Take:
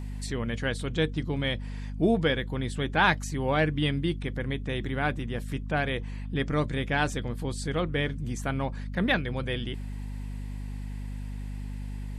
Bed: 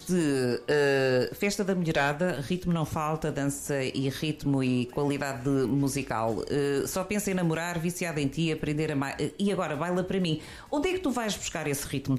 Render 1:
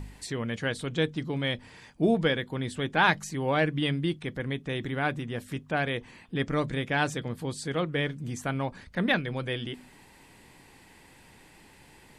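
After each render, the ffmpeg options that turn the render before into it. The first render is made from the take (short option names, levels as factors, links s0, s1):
-af "bandreject=f=50:t=h:w=4,bandreject=f=100:t=h:w=4,bandreject=f=150:t=h:w=4,bandreject=f=200:t=h:w=4,bandreject=f=250:t=h:w=4"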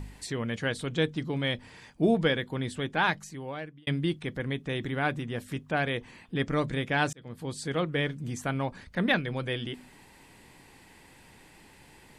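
-filter_complex "[0:a]asplit=3[s0][s1][s2];[s0]atrim=end=3.87,asetpts=PTS-STARTPTS,afade=t=out:st=2.62:d=1.25[s3];[s1]atrim=start=3.87:end=7.13,asetpts=PTS-STARTPTS,afade=t=in:d=0.004:c=hsin,afade=t=out:st=3.256:d=0.004:c=hsin[s4];[s2]atrim=start=7.13,asetpts=PTS-STARTPTS,afade=t=in:d=0.63:c=qsin[s5];[s3][s4][s5]concat=n=3:v=0:a=1"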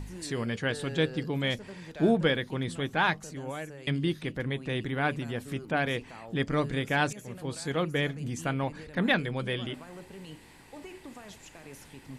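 -filter_complex "[1:a]volume=0.126[s0];[0:a][s0]amix=inputs=2:normalize=0"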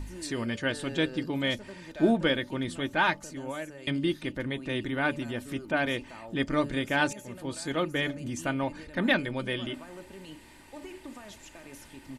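-af "aecho=1:1:3.3:0.48,bandreject=f=288.5:t=h:w=4,bandreject=f=577:t=h:w=4,bandreject=f=865.5:t=h:w=4"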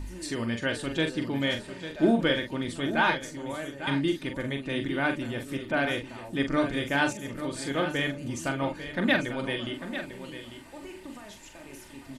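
-filter_complex "[0:a]asplit=2[s0][s1];[s1]adelay=43,volume=0.447[s2];[s0][s2]amix=inputs=2:normalize=0,asplit=2[s3][s4];[s4]aecho=0:1:847:0.282[s5];[s3][s5]amix=inputs=2:normalize=0"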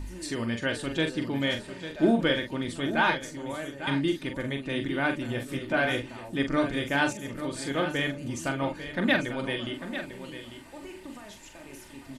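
-filter_complex "[0:a]asettb=1/sr,asplit=3[s0][s1][s2];[s0]atrim=end=5.274[s3];[s1]atrim=start=5.27:end=6.06,asetpts=PTS-STARTPTS,afade=t=in:d=0.004:c=qsin,afade=t=out:st=0.786:d=0.004:c=qsin,asplit=2[s4][s5];[s5]adelay=16,volume=0.562[s6];[s4][s6]amix=inputs=2:normalize=0,atrim=end_sample=34839[s7];[s2]atrim=start=6.056[s8];[s3][s7]acrossfade=d=0.004:c1=hsin:c2=qsin[s9];[s9][s8]acrossfade=d=0.004:c1=qsin:c2=hsin"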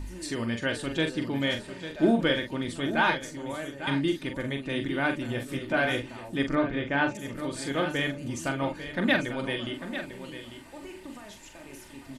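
-filter_complex "[0:a]asettb=1/sr,asplit=3[s0][s1][s2];[s0]atrim=end=6.554[s3];[s1]atrim=start=6.55:end=7.15,asetpts=PTS-STARTPTS,afade=t=in:d=0.004:c=qsin,afade=t=out:st=0.596:d=0.004:c=qsin,lowpass=2600[s4];[s2]atrim=start=7.146[s5];[s3][s4]acrossfade=d=0.004:c1=hsin:c2=qsin[s6];[s6][s5]acrossfade=d=0.004:c1=qsin:c2=hsin"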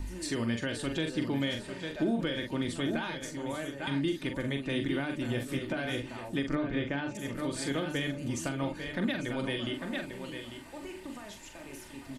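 -filter_complex "[0:a]alimiter=limit=0.1:level=0:latency=1:release=137,acrossover=split=420|3000[s0][s1][s2];[s1]acompressor=threshold=0.0158:ratio=6[s3];[s0][s3][s2]amix=inputs=3:normalize=0"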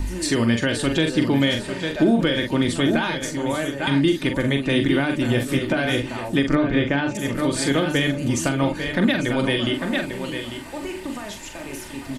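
-af "volume=3.98"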